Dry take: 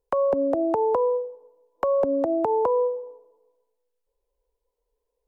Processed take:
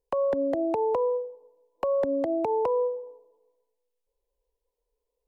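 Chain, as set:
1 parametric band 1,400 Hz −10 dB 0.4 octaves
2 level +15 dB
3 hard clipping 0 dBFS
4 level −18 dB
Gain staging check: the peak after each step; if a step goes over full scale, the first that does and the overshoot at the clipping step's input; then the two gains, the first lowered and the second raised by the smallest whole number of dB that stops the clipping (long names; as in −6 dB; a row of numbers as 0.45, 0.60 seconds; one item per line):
−10.5, +4.5, 0.0, −18.0 dBFS
step 2, 4.5 dB
step 2 +10 dB, step 4 −13 dB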